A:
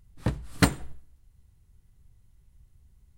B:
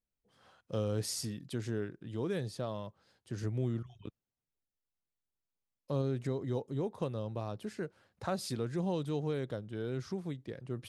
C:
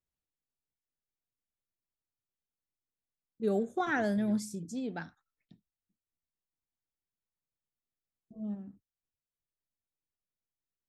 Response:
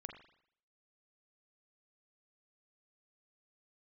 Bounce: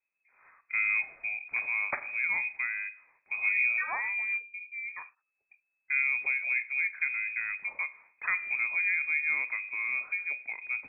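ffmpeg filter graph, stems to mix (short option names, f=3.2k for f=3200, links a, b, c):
-filter_complex "[0:a]highpass=380,adelay=1300,volume=0.5dB,asplit=2[a][b];[b]volume=-10.5dB[c];[1:a]volume=2dB,asplit=3[d][e][f];[e]volume=-3.5dB[g];[2:a]volume=-2.5dB[h];[f]apad=whole_len=197277[i];[a][i]sidechaincompress=threshold=-47dB:ratio=3:attack=16:release=718[j];[3:a]atrim=start_sample=2205[k];[c][g]amix=inputs=2:normalize=0[l];[l][k]afir=irnorm=-1:irlink=0[m];[j][d][h][m]amix=inputs=4:normalize=0,lowpass=f=2.2k:t=q:w=0.5098,lowpass=f=2.2k:t=q:w=0.6013,lowpass=f=2.2k:t=q:w=0.9,lowpass=f=2.2k:t=q:w=2.563,afreqshift=-2600"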